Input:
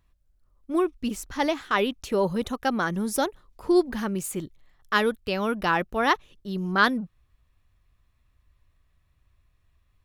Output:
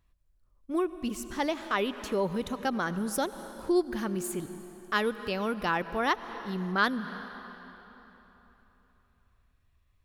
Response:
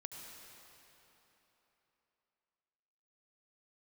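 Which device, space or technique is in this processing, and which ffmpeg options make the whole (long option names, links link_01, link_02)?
ducked reverb: -filter_complex "[0:a]asplit=3[link_01][link_02][link_03];[1:a]atrim=start_sample=2205[link_04];[link_02][link_04]afir=irnorm=-1:irlink=0[link_05];[link_03]apad=whole_len=442852[link_06];[link_05][link_06]sidechaincompress=threshold=-27dB:ratio=6:attack=16:release=242,volume=-1.5dB[link_07];[link_01][link_07]amix=inputs=2:normalize=0,volume=-6.5dB"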